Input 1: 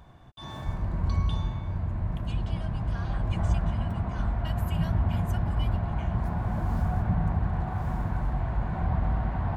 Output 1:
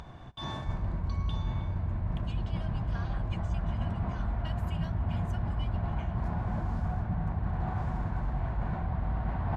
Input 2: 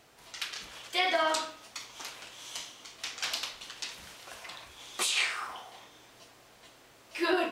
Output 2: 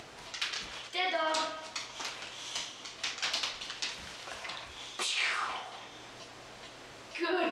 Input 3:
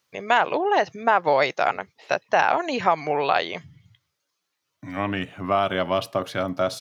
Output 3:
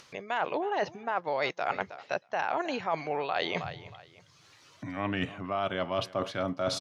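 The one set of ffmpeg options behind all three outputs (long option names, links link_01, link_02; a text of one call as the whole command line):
ffmpeg -i in.wav -af "aecho=1:1:317|634:0.0794|0.0159,areverse,acompressor=threshold=-32dB:ratio=6,areverse,lowpass=6900,acompressor=mode=upward:threshold=-46dB:ratio=2.5,volume=4dB" out.wav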